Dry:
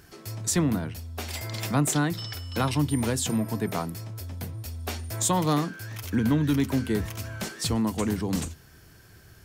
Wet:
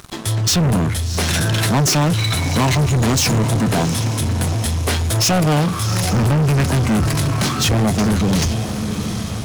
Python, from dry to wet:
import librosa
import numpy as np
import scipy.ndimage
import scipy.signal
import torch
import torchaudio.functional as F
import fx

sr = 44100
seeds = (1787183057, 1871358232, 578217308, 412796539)

y = fx.formant_shift(x, sr, semitones=-5)
y = fx.echo_diffused(y, sr, ms=749, feedback_pct=53, wet_db=-14)
y = fx.leveller(y, sr, passes=5)